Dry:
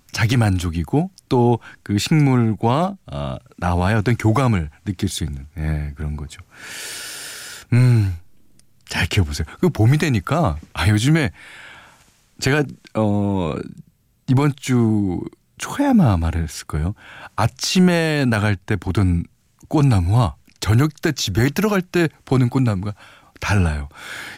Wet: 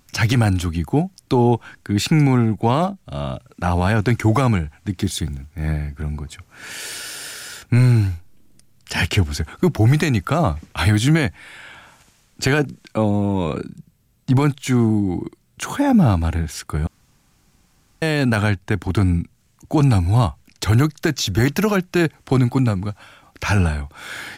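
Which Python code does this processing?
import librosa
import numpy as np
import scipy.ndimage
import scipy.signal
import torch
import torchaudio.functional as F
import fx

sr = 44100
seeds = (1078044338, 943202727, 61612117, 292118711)

y = fx.quant_companded(x, sr, bits=8, at=(4.98, 5.67))
y = fx.edit(y, sr, fx.room_tone_fill(start_s=16.87, length_s=1.15), tone=tone)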